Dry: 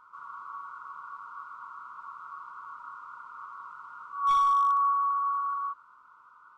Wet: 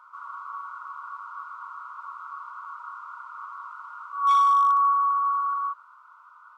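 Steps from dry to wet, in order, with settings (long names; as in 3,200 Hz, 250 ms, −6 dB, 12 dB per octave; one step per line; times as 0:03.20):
elliptic high-pass filter 580 Hz, stop band 40 dB
level +4.5 dB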